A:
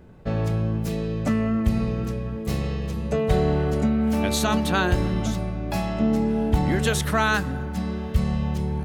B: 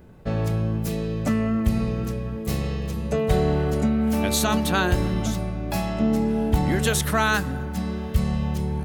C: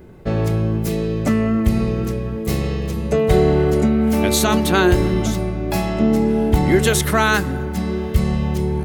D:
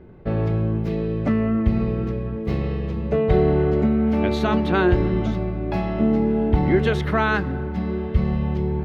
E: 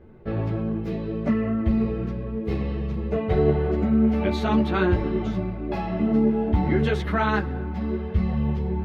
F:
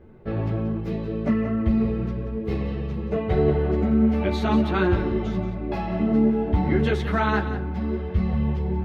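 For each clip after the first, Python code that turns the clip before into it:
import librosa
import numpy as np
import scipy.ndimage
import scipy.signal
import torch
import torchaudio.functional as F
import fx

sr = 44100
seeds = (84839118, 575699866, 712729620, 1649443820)

y1 = fx.high_shelf(x, sr, hz=9000.0, db=9.0)
y2 = fx.small_body(y1, sr, hz=(370.0, 2100.0), ring_ms=45, db=9)
y2 = y2 * librosa.db_to_amplitude(4.5)
y3 = fx.air_absorb(y2, sr, metres=320.0)
y3 = y3 * librosa.db_to_amplitude(-2.5)
y4 = fx.ensemble(y3, sr)
y5 = y4 + 10.0 ** (-11.5 / 20.0) * np.pad(y4, (int(180 * sr / 1000.0), 0))[:len(y4)]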